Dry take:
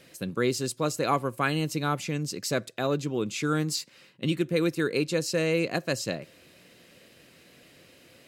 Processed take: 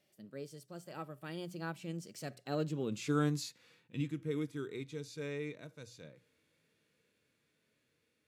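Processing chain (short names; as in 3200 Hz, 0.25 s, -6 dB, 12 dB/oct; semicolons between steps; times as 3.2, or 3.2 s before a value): Doppler pass-by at 3.03, 42 m/s, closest 27 m; harmonic-percussive split percussive -10 dB; notches 60/120/180 Hz; gain -3.5 dB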